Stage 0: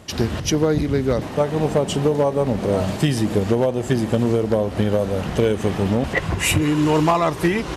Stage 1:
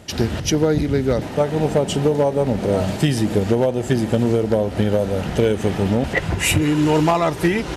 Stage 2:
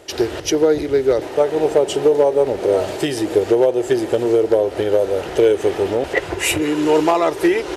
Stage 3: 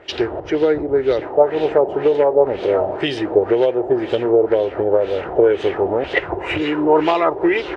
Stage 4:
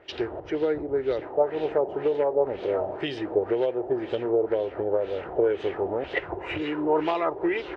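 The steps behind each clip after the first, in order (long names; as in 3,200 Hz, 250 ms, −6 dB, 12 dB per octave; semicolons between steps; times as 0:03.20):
notch filter 1,100 Hz, Q 7.4; level +1 dB
low shelf with overshoot 280 Hz −9.5 dB, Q 3
auto-filter low-pass sine 2 Hz 740–3,600 Hz; level −1.5 dB
high-frequency loss of the air 66 metres; level −9 dB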